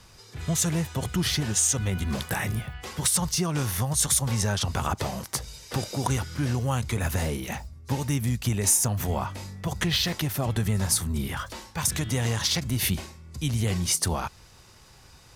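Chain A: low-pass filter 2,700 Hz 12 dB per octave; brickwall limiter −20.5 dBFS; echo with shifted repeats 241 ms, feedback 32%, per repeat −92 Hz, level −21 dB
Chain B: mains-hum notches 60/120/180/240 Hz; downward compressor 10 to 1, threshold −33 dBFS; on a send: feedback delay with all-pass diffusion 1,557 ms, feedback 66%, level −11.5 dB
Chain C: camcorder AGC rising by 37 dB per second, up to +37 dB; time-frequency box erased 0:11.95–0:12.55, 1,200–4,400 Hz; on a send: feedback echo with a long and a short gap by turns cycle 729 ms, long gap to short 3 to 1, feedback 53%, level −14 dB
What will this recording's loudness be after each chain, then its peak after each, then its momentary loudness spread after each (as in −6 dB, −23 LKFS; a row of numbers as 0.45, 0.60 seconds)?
−31.0, −36.5, −26.0 LKFS; −19.5, −17.0, −11.5 dBFS; 7, 5, 8 LU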